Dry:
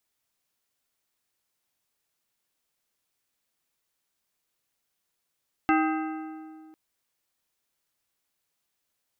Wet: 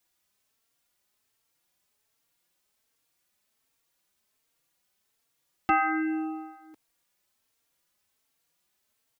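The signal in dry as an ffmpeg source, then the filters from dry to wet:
-f lavfi -i "aevalsrc='0.0944*pow(10,-3*t/2.22)*sin(2*PI*315*t)+0.0708*pow(10,-3*t/1.686)*sin(2*PI*787.5*t)+0.0531*pow(10,-3*t/1.465)*sin(2*PI*1260*t)+0.0398*pow(10,-3*t/1.37)*sin(2*PI*1575*t)+0.0299*pow(10,-3*t/1.266)*sin(2*PI*2047.5*t)+0.0224*pow(10,-3*t/1.168)*sin(2*PI*2677.5*t)':d=1.05:s=44100"
-filter_complex "[0:a]asplit=2[a][b];[b]alimiter=limit=-22dB:level=0:latency=1,volume=1dB[c];[a][c]amix=inputs=2:normalize=0,asplit=2[d][e];[e]adelay=3.8,afreqshift=1.3[f];[d][f]amix=inputs=2:normalize=1"

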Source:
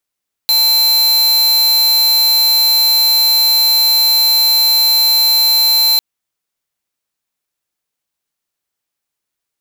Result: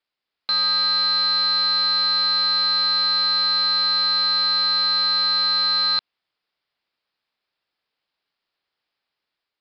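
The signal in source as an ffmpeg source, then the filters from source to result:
-f lavfi -i "aevalsrc='0.282*(2*lt(mod(4090*t,1),0.5)-1)':d=5.5:s=44100"
-af "lowshelf=f=260:g=-9,dynaudnorm=f=170:g=5:m=4dB,aresample=11025,asoftclip=type=tanh:threshold=-19.5dB,aresample=44100"

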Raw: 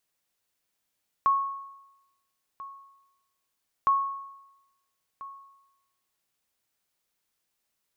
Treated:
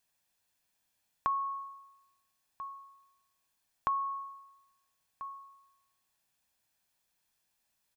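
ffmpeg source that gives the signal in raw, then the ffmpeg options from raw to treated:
-f lavfi -i "aevalsrc='0.15*(sin(2*PI*1100*mod(t,2.61))*exp(-6.91*mod(t,2.61)/0.96)+0.119*sin(2*PI*1100*max(mod(t,2.61)-1.34,0))*exp(-6.91*max(mod(t,2.61)-1.34,0)/0.96))':d=5.22:s=44100"
-af "aecho=1:1:1.2:0.37,acompressor=threshold=-31dB:ratio=3"

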